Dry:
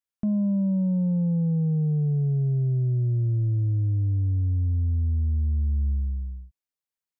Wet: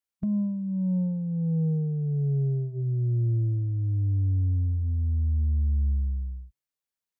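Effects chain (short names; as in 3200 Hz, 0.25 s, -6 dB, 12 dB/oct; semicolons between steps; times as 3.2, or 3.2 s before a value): de-hum 130.8 Hz, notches 3; formant shift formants -2 st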